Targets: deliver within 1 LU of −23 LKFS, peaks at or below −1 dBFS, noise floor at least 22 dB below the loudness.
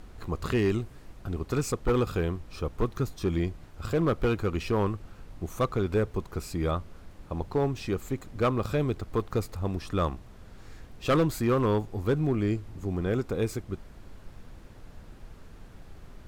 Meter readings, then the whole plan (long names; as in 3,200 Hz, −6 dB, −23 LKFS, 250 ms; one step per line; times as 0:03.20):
share of clipped samples 0.8%; peaks flattened at −18.0 dBFS; background noise floor −50 dBFS; target noise floor −52 dBFS; integrated loudness −29.5 LKFS; sample peak −18.0 dBFS; target loudness −23.0 LKFS
→ clipped peaks rebuilt −18 dBFS
noise reduction from a noise print 6 dB
level +6.5 dB